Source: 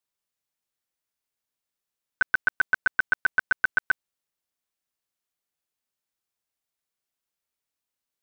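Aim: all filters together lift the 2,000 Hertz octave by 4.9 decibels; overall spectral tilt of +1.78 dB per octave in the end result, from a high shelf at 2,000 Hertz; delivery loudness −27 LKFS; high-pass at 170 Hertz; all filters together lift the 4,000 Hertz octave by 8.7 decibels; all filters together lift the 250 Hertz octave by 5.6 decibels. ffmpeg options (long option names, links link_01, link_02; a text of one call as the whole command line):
ffmpeg -i in.wav -af "highpass=170,equalizer=frequency=250:width_type=o:gain=8,highshelf=frequency=2000:gain=7,equalizer=frequency=2000:width_type=o:gain=3,equalizer=frequency=4000:width_type=o:gain=3.5,volume=-6dB" out.wav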